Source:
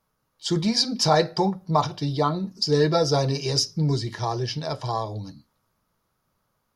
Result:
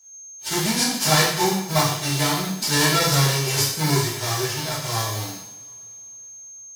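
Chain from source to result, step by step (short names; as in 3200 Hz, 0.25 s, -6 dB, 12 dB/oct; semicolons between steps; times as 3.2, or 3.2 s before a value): spectral whitening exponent 0.3; whine 6400 Hz -46 dBFS; two-slope reverb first 0.69 s, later 3.1 s, from -25 dB, DRR -9.5 dB; gain -7.5 dB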